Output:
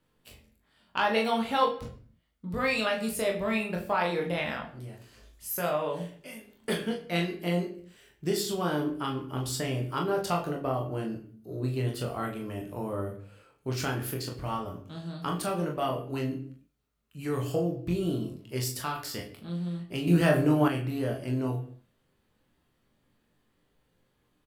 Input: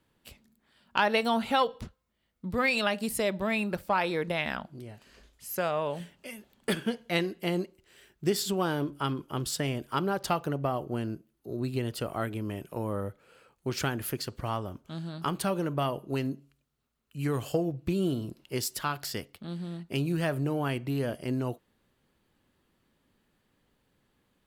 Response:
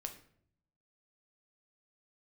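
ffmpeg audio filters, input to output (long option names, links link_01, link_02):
-filter_complex "[0:a]asettb=1/sr,asplit=3[link_01][link_02][link_03];[link_01]atrim=end=4.814[link_04];[link_02]atrim=start=4.81:end=5.69,asetpts=PTS-STARTPTS,afade=type=in:duration=0.004:curve=qsin,afade=type=out:start_time=0.876:duration=0.004:curve=qsin,highshelf=frequency=8400:gain=9[link_05];[link_03]atrim=start=5.686[link_06];[link_04][link_05]acrossfade=duration=0.004:curve1=hsin:curve2=qsin[link_07];[link_07][link_06]acrossfade=duration=0.004:curve1=qsin:curve2=hsin,aecho=1:1:23|40:0.562|0.422[link_08];[1:a]atrim=start_sample=2205,afade=type=out:start_time=0.37:duration=0.01,atrim=end_sample=16758[link_09];[link_08][link_09]afir=irnorm=-1:irlink=0,asettb=1/sr,asplit=3[link_10][link_11][link_12];[link_10]atrim=end=20.074[link_13];[link_11]atrim=start=20.07:end=20.68,asetpts=PTS-STARTPTS,afade=type=in:duration=0.004:curve=qsin,afade=type=out:start_time=0.606:duration=0.004:curve=qsin,acontrast=72[link_14];[link_12]atrim=start=20.676[link_15];[link_13][link_14]acrossfade=duration=0.004:curve1=hsin:curve2=qsin[link_16];[link_16][link_15]acrossfade=duration=0.004:curve1=qsin:curve2=hsin"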